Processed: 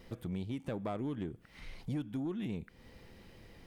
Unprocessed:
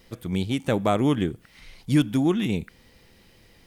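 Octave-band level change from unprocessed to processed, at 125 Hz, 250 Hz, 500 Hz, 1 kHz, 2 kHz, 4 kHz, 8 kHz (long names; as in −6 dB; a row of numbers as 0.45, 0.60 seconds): −14.0 dB, −14.5 dB, −15.5 dB, −17.0 dB, −17.0 dB, −19.5 dB, below −20 dB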